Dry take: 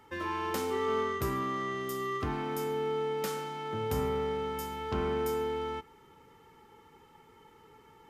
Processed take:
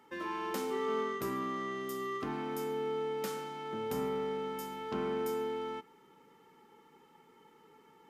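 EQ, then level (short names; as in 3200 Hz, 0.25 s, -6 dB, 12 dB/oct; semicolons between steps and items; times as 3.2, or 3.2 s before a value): resonant low shelf 130 Hz -13.5 dB, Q 1.5; -4.0 dB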